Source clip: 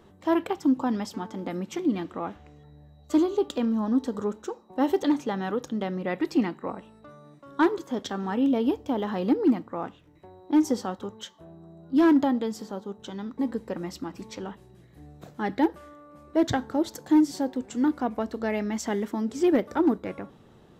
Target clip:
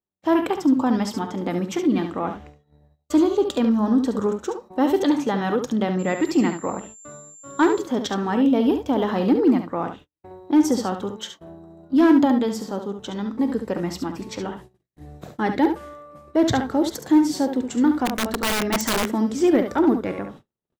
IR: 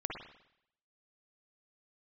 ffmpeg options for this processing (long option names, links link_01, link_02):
-filter_complex "[0:a]asplit=2[link_01][link_02];[link_02]alimiter=limit=-21dB:level=0:latency=1:release=14,volume=1dB[link_03];[link_01][link_03]amix=inputs=2:normalize=0,aecho=1:1:46|70:0.126|0.398,agate=range=-46dB:threshold=-41dB:ratio=16:detection=peak,asettb=1/sr,asplit=3[link_04][link_05][link_06];[link_04]atrim=end=5.994[link_07];[link_05]atrim=start=5.99:end=7.82,asetpts=PTS-STARTPTS,afade=type=in:duration=0.004:curve=qsin,afade=type=out:start_time=1.826:duration=0.004:curve=qsin,aeval=exprs='val(0)+0.00708*sin(2*PI*7300*n/s)':channel_layout=same[link_08];[link_06]atrim=start=7.816[link_09];[link_07][link_08]acrossfade=duration=0.004:curve1=hsin:curve2=qsin[link_10];[link_10][link_09]acrossfade=duration=0.004:curve1=qsin:curve2=hsin,asplit=3[link_11][link_12][link_13];[link_11]afade=type=out:start_time=18.05:duration=0.02[link_14];[link_12]aeval=exprs='(mod(6.31*val(0)+1,2)-1)/6.31':channel_layout=same,afade=type=in:start_time=18.05:duration=0.02,afade=type=out:start_time=19.07:duration=0.02[link_15];[link_13]afade=type=in:start_time=19.07:duration=0.02[link_16];[link_14][link_15][link_16]amix=inputs=3:normalize=0"